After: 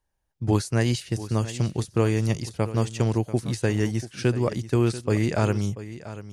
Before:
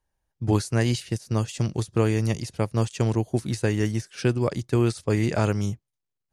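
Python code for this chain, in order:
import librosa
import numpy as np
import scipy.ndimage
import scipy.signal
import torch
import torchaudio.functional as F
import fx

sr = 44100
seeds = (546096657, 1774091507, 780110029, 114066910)

y = x + 10.0 ** (-14.5 / 20.0) * np.pad(x, (int(688 * sr / 1000.0), 0))[:len(x)]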